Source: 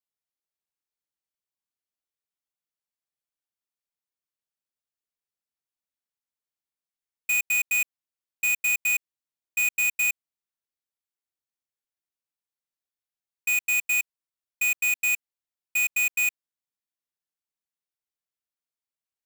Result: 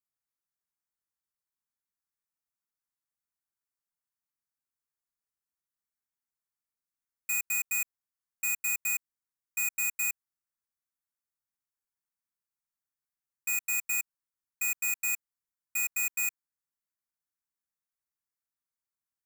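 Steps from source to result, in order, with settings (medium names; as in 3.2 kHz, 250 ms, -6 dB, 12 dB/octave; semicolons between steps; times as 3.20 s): static phaser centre 1.3 kHz, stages 4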